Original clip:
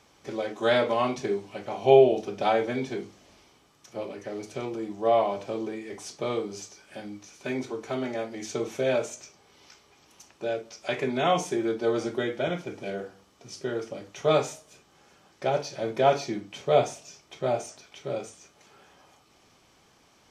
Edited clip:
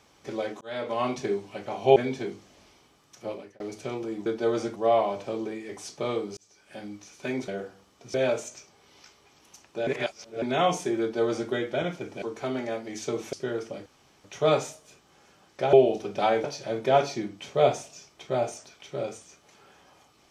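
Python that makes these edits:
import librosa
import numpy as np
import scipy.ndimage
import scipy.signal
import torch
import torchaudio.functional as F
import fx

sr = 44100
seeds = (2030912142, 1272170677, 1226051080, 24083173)

y = fx.edit(x, sr, fx.fade_in_span(start_s=0.61, length_s=0.52),
    fx.move(start_s=1.96, length_s=0.71, to_s=15.56),
    fx.fade_out_span(start_s=4.01, length_s=0.3),
    fx.fade_in_span(start_s=6.58, length_s=0.46),
    fx.swap(start_s=7.69, length_s=1.11, other_s=12.88, other_length_s=0.66),
    fx.reverse_span(start_s=10.53, length_s=0.55),
    fx.duplicate(start_s=11.67, length_s=0.5, to_s=4.97),
    fx.insert_room_tone(at_s=14.07, length_s=0.38), tone=tone)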